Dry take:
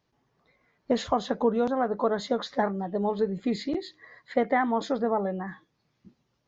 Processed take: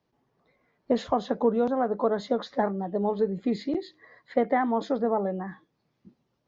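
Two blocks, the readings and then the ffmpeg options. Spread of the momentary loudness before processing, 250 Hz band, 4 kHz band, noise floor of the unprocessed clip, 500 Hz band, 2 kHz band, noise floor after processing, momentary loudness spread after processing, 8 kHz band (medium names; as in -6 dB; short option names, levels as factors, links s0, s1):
7 LU, +0.5 dB, -4.5 dB, -75 dBFS, +1.0 dB, -3.5 dB, -76 dBFS, 7 LU, no reading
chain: -filter_complex "[0:a]lowpass=6500,acrossover=split=150|950[s0][s1][s2];[s1]acontrast=35[s3];[s0][s3][s2]amix=inputs=3:normalize=0,volume=0.631"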